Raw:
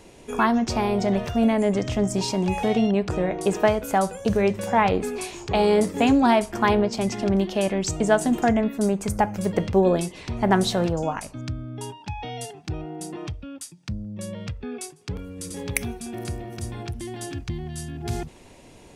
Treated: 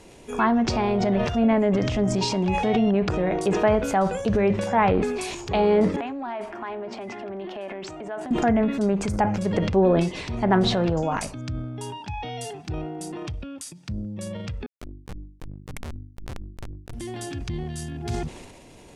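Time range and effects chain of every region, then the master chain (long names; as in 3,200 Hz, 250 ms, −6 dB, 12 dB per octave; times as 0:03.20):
0:05.96–0:08.31: three-way crossover with the lows and the highs turned down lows −20 dB, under 290 Hz, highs −22 dB, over 2,800 Hz + downward compressor 3 to 1, threshold −32 dBFS + notch filter 480 Hz, Q 6
0:14.66–0:16.93: comparator with hysteresis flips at −23.5 dBFS + mains-hum notches 50/100/150/200/250/300/350 Hz + level that may fall only so fast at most 120 dB per second
whole clip: treble cut that deepens with the level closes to 2,400 Hz, closed at −16 dBFS; transient designer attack −2 dB, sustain +8 dB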